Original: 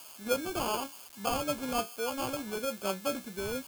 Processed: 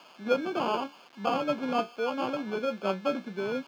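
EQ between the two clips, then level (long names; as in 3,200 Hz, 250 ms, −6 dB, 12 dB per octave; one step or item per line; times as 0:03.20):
Butterworth high-pass 150 Hz 36 dB per octave
high-frequency loss of the air 250 metres
+5.0 dB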